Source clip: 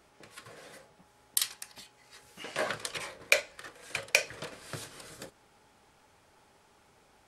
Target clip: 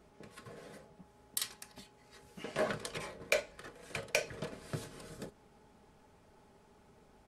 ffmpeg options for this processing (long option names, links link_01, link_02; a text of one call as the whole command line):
ffmpeg -i in.wav -filter_complex "[0:a]tiltshelf=frequency=640:gain=6.5,aecho=1:1:4.7:0.31,asplit=2[link_01][link_02];[link_02]aeval=exprs='0.0596*(abs(mod(val(0)/0.0596+3,4)-2)-1)':channel_layout=same,volume=-11dB[link_03];[link_01][link_03]amix=inputs=2:normalize=0,volume=-3dB" out.wav